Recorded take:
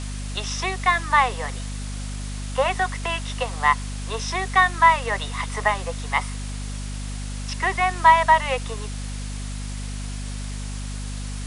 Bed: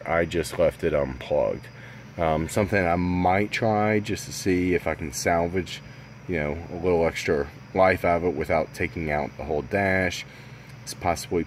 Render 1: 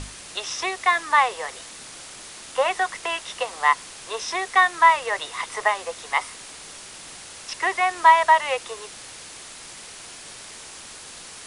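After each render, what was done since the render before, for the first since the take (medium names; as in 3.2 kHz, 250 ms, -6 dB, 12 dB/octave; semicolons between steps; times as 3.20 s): hum notches 50/100/150/200/250 Hz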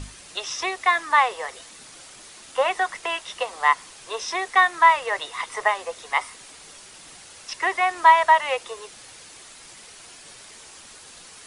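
noise reduction 6 dB, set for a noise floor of -41 dBFS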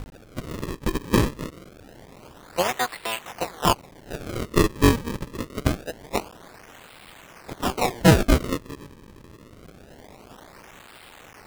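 cycle switcher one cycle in 3, muted; decimation with a swept rate 35×, swing 160% 0.25 Hz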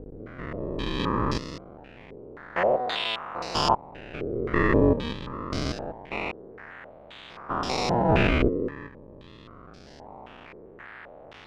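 spectrogram pixelated in time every 200 ms; step-sequenced low-pass 3.8 Hz 430–5100 Hz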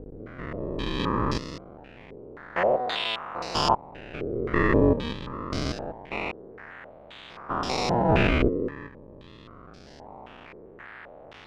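no audible change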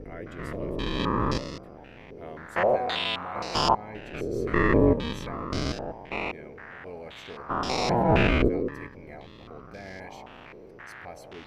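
add bed -20 dB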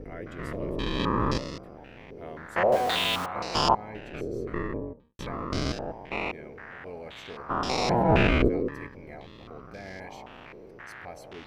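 2.72–3.26 s: jump at every zero crossing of -30.5 dBFS; 3.84–5.19 s: studio fade out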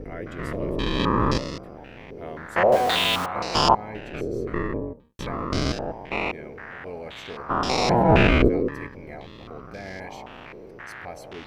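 trim +4.5 dB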